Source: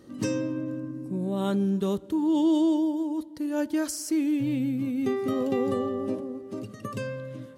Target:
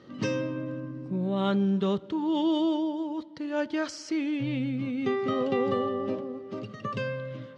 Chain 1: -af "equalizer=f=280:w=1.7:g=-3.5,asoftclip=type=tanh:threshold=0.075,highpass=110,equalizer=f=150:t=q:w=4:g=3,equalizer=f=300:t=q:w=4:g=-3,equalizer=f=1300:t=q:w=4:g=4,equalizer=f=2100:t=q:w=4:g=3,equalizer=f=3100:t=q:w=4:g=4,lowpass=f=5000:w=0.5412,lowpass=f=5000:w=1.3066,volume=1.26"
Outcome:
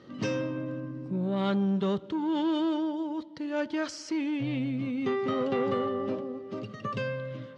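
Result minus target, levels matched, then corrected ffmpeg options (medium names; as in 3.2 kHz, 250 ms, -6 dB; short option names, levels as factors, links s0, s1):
saturation: distortion +15 dB
-af "equalizer=f=280:w=1.7:g=-3.5,asoftclip=type=tanh:threshold=0.211,highpass=110,equalizer=f=150:t=q:w=4:g=3,equalizer=f=300:t=q:w=4:g=-3,equalizer=f=1300:t=q:w=4:g=4,equalizer=f=2100:t=q:w=4:g=3,equalizer=f=3100:t=q:w=4:g=4,lowpass=f=5000:w=0.5412,lowpass=f=5000:w=1.3066,volume=1.26"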